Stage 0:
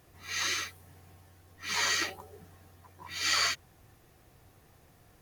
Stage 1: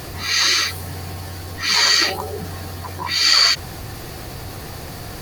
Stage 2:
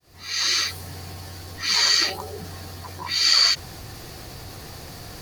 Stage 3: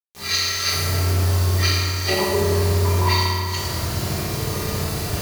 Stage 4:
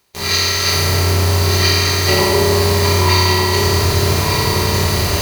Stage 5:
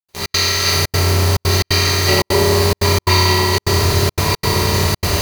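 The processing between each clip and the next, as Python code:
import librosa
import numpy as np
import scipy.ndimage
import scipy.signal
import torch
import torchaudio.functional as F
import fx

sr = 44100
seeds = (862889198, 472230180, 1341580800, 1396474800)

y1 = fx.peak_eq(x, sr, hz=4500.0, db=9.5, octaves=0.28)
y1 = fx.env_flatten(y1, sr, amount_pct=50)
y1 = y1 * librosa.db_to_amplitude(8.0)
y2 = fx.fade_in_head(y1, sr, length_s=0.58)
y2 = fx.peak_eq(y2, sr, hz=5300.0, db=4.5, octaves=1.3)
y2 = y2 * librosa.db_to_amplitude(-7.0)
y3 = fx.over_compress(y2, sr, threshold_db=-27.0, ratio=-0.5)
y3 = fx.quant_dither(y3, sr, seeds[0], bits=6, dither='none')
y3 = fx.rev_fdn(y3, sr, rt60_s=2.5, lf_ratio=1.4, hf_ratio=0.5, size_ms=15.0, drr_db=-9.0)
y3 = y3 * librosa.db_to_amplitude(-2.0)
y4 = fx.bin_compress(y3, sr, power=0.6)
y4 = y4 + 10.0 ** (-6.0 / 20.0) * np.pad(y4, (int(1200 * sr / 1000.0), 0))[:len(y4)]
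y4 = y4 * librosa.db_to_amplitude(3.0)
y5 = fx.step_gate(y4, sr, bpm=176, pattern='.xx.xxxxxx.xxxxx', floor_db=-60.0, edge_ms=4.5)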